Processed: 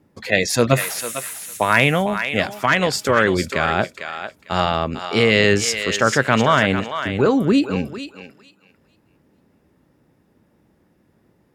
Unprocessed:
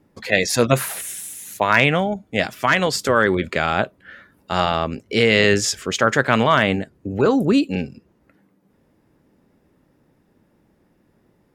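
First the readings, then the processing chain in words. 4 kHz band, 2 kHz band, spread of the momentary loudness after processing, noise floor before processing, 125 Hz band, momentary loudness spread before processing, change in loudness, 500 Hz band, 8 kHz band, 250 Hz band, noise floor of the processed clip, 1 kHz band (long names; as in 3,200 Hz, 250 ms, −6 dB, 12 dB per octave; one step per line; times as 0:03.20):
+1.0 dB, +0.5 dB, 11 LU, −62 dBFS, +1.5 dB, 11 LU, +0.5 dB, +0.5 dB, +1.0 dB, +0.5 dB, −61 dBFS, +0.5 dB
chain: high-pass filter 57 Hz
low-shelf EQ 79 Hz +6 dB
feedback echo with a high-pass in the loop 450 ms, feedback 19%, high-pass 850 Hz, level −7 dB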